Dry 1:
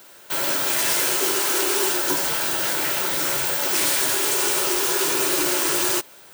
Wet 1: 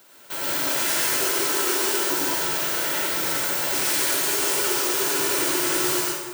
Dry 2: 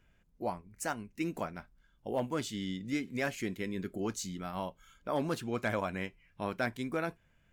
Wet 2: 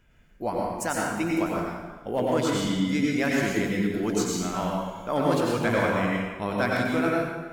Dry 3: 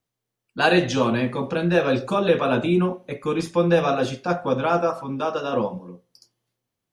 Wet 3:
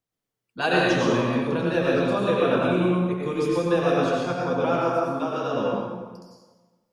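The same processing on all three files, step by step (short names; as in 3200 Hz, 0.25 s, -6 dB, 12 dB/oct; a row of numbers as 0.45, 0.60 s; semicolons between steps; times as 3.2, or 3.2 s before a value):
plate-style reverb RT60 1.3 s, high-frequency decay 0.75×, pre-delay 80 ms, DRR -3.5 dB; normalise peaks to -9 dBFS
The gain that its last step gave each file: -6.0, +5.5, -6.0 dB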